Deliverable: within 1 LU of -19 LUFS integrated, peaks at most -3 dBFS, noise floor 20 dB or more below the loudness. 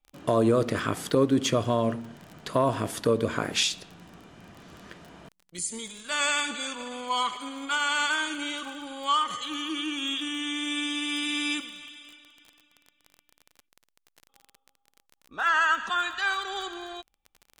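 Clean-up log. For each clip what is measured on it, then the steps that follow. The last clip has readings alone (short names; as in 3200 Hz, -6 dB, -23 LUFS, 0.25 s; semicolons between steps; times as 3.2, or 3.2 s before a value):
ticks 24/s; loudness -27.5 LUFS; peak -10.0 dBFS; loudness target -19.0 LUFS
-> de-click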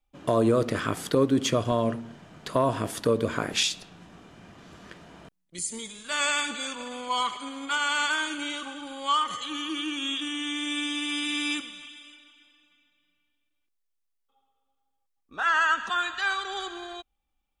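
ticks 0/s; loudness -27.5 LUFS; peak -10.0 dBFS; loudness target -19.0 LUFS
-> gain +8.5 dB; limiter -3 dBFS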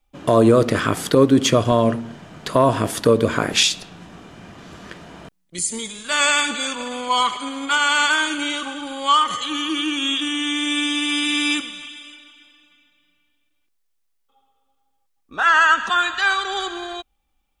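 loudness -19.0 LUFS; peak -3.0 dBFS; noise floor -68 dBFS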